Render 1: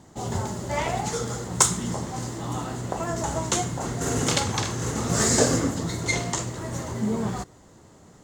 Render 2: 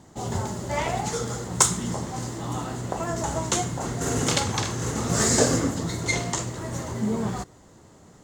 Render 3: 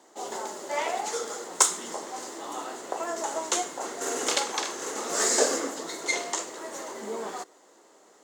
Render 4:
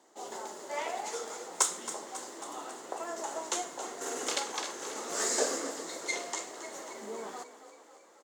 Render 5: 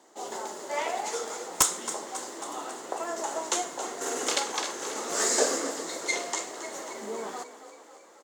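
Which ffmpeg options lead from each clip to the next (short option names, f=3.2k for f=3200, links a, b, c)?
-af anull
-af "highpass=f=350:w=0.5412,highpass=f=350:w=1.3066,volume=-1.5dB"
-filter_complex "[0:a]asplit=8[a][b][c][d][e][f][g][h];[b]adelay=272,afreqshift=30,volume=-13dB[i];[c]adelay=544,afreqshift=60,volume=-17dB[j];[d]adelay=816,afreqshift=90,volume=-21dB[k];[e]adelay=1088,afreqshift=120,volume=-25dB[l];[f]adelay=1360,afreqshift=150,volume=-29.1dB[m];[g]adelay=1632,afreqshift=180,volume=-33.1dB[n];[h]adelay=1904,afreqshift=210,volume=-37.1dB[o];[a][i][j][k][l][m][n][o]amix=inputs=8:normalize=0,volume=-6.5dB"
-af "aeval=exprs='(mod(4.22*val(0)+1,2)-1)/4.22':c=same,volume=5dB"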